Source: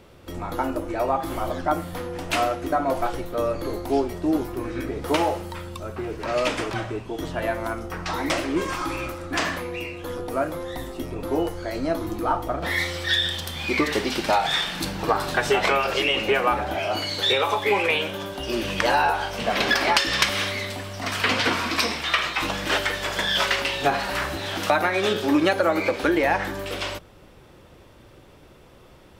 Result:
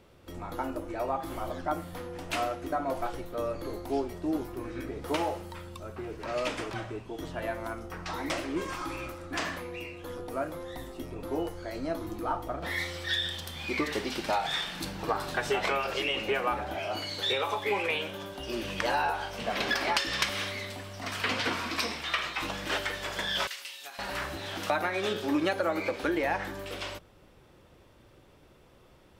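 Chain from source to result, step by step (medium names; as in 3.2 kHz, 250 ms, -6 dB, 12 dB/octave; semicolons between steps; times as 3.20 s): 23.47–23.99 s: differentiator; trim -8 dB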